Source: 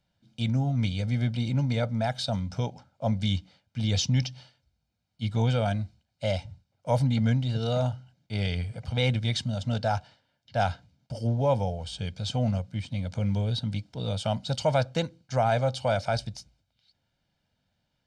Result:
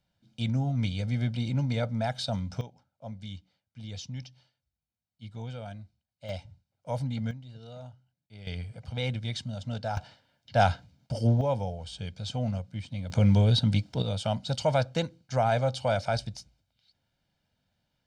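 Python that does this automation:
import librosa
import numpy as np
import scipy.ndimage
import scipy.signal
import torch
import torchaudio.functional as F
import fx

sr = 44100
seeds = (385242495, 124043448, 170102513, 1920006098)

y = fx.gain(x, sr, db=fx.steps((0.0, -2.0), (2.61, -14.0), (6.29, -7.5), (7.31, -18.0), (8.47, -6.0), (9.97, 3.5), (11.41, -4.0), (13.1, 6.0), (14.02, -1.0)))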